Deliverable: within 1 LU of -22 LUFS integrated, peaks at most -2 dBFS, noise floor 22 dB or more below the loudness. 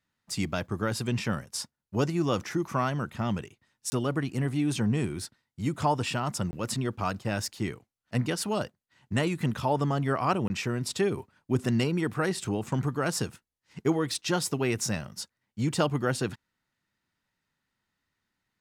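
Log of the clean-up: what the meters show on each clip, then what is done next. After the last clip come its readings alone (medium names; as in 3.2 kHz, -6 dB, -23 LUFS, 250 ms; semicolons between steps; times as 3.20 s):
dropouts 3; longest dropout 20 ms; loudness -30.0 LUFS; peak level -12.5 dBFS; loudness target -22.0 LUFS
-> interpolate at 3.90/6.51/10.48 s, 20 ms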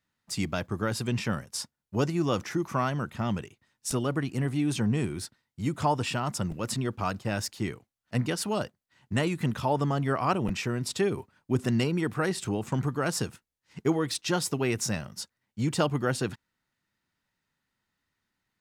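dropouts 0; loudness -30.0 LUFS; peak level -12.5 dBFS; loudness target -22.0 LUFS
-> trim +8 dB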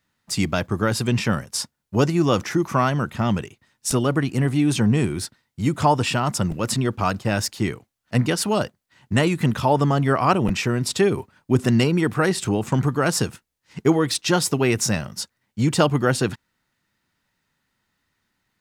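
loudness -22.0 LUFS; peak level -4.5 dBFS; noise floor -77 dBFS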